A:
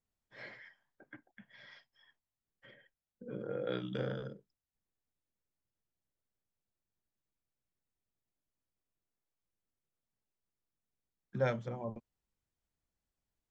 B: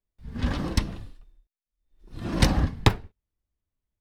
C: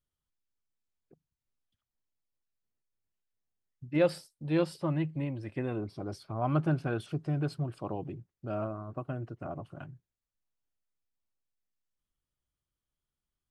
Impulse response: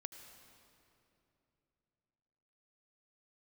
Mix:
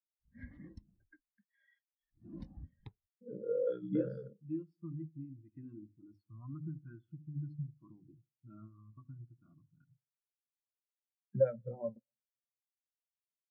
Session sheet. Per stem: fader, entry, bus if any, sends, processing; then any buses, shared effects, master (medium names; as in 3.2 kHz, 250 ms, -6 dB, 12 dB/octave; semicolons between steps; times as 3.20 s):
+0.5 dB, 0.00 s, bus A, send -15.5 dB, no echo send, peaking EQ 1.6 kHz +2.5 dB
-13.5 dB, 0.00 s, bus A, no send, no echo send, none
-5.5 dB, 0.00 s, no bus, no send, echo send -13.5 dB, high-order bell 580 Hz -14.5 dB 1.3 oct; hum notches 50/100/150/200/250/300 Hz; compression 5:1, threshold -35 dBFS, peak gain reduction 9.5 dB
bus A: 0.0 dB, treble shelf 7.8 kHz +6 dB; compression 8:1, threshold -37 dBFS, peak gain reduction 12.5 dB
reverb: on, RT60 3.0 s, pre-delay 71 ms
echo: feedback delay 75 ms, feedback 57%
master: bass shelf 97 Hz -8 dB; spectral contrast expander 2.5:1